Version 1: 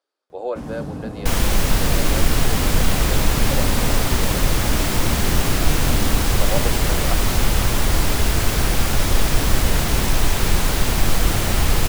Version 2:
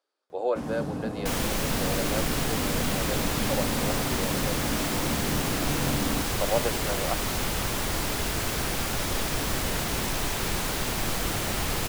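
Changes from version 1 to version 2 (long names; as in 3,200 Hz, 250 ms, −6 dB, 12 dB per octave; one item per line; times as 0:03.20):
second sound −6.0 dB
master: add low-shelf EQ 89 Hz −12 dB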